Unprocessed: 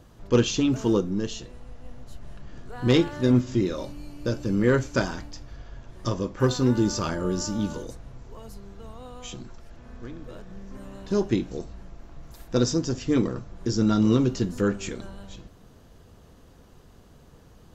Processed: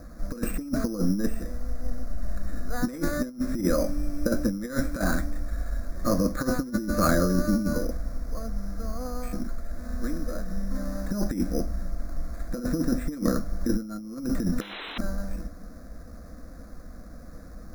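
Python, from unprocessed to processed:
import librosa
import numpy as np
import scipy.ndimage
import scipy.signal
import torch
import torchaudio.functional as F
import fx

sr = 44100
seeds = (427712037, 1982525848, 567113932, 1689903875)

y = fx.low_shelf(x, sr, hz=110.0, db=5.5)
y = np.repeat(scipy.signal.resample_poly(y, 1, 8), 8)[:len(y)]
y = fx.fixed_phaser(y, sr, hz=600.0, stages=8)
y = fx.spec_paint(y, sr, seeds[0], shape='noise', start_s=14.61, length_s=0.37, low_hz=270.0, high_hz=4100.0, level_db=-20.0)
y = fx.over_compress(y, sr, threshold_db=-29.0, ratio=-0.5)
y = y * 10.0 ** (5.5 / 20.0)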